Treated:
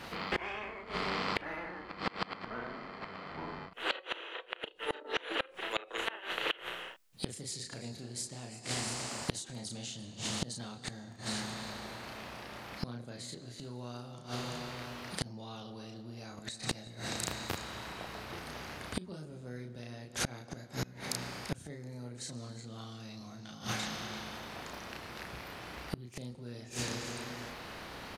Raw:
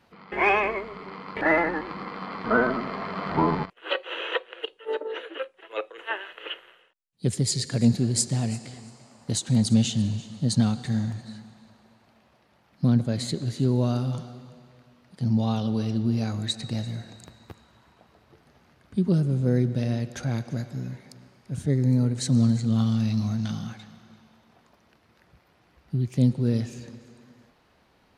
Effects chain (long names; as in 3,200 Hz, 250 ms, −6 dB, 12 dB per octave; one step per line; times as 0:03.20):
double-tracking delay 33 ms −3 dB
gate with flip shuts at −22 dBFS, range −29 dB
every bin compressed towards the loudest bin 2 to 1
level +7 dB